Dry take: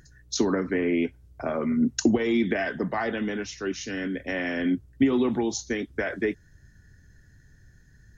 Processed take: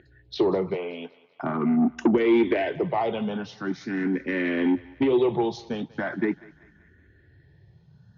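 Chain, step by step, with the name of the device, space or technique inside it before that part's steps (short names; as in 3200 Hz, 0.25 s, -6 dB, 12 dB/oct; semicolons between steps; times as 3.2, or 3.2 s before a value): 0.74–1.43 HPF 550 Hz 12 dB/oct; barber-pole phaser into a guitar amplifier (endless phaser +0.42 Hz; soft clip -22.5 dBFS, distortion -12 dB; speaker cabinet 100–3700 Hz, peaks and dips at 160 Hz +6 dB, 360 Hz +6 dB, 880 Hz +4 dB, 1700 Hz -4 dB); thinning echo 0.192 s, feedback 54%, high-pass 590 Hz, level -19 dB; gain +5 dB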